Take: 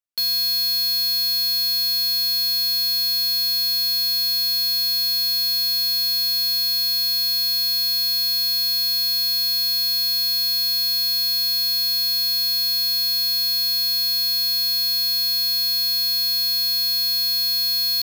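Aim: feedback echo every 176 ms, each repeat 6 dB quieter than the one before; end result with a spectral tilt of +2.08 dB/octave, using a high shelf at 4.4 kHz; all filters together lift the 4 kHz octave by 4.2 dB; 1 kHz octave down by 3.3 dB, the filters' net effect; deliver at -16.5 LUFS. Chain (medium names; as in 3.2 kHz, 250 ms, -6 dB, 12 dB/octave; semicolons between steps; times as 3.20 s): peaking EQ 1 kHz -5 dB; peaking EQ 4 kHz +8.5 dB; treble shelf 4.4 kHz -7.5 dB; feedback delay 176 ms, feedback 50%, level -6 dB; trim -1.5 dB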